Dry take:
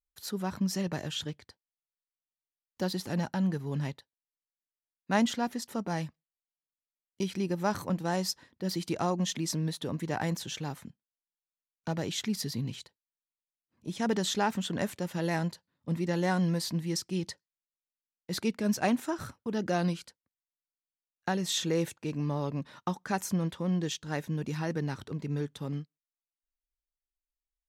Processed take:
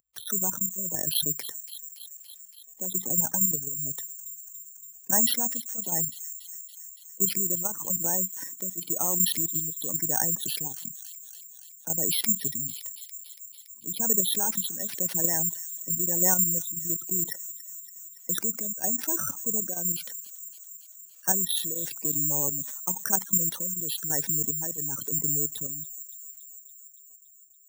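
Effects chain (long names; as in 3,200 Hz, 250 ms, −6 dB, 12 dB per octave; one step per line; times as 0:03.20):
gate on every frequency bin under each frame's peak −15 dB strong
high-pass filter 130 Hz 24 dB per octave
shaped tremolo triangle 1 Hz, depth 95%
output level in coarse steps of 10 dB
high-shelf EQ 4,100 Hz +8 dB
bad sample-rate conversion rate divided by 6×, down filtered, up zero stuff
low-shelf EQ 230 Hz −4.5 dB
delay with a high-pass on its return 283 ms, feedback 52%, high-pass 3,000 Hz, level −23.5 dB
envelope flattener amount 50%
level +1.5 dB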